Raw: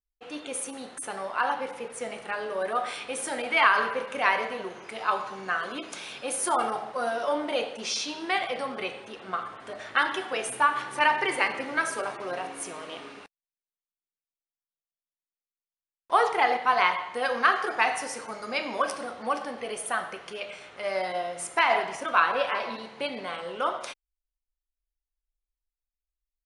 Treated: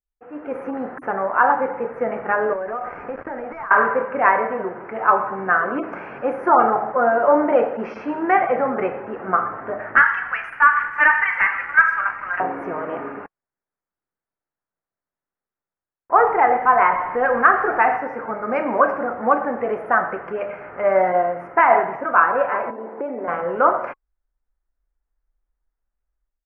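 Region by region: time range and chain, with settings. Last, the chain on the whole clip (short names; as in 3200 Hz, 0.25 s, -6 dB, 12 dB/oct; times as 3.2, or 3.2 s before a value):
2.53–3.71 switching dead time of 0.13 ms + Bessel low-pass 5500 Hz + compressor, threshold -37 dBFS
9.96–12.4 HPF 1400 Hz 24 dB/oct + sample leveller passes 2
16.16–17.97 zero-crossing step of -34.5 dBFS + high shelf 6600 Hz +8.5 dB
22.7–23.28 tilt shelf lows +9 dB, about 840 Hz + compressor 12:1, threshold -33 dBFS + HPF 290 Hz 24 dB/oct
whole clip: inverse Chebyshev low-pass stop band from 3400 Hz, stop band 40 dB; notch 1100 Hz, Q 26; AGC gain up to 13.5 dB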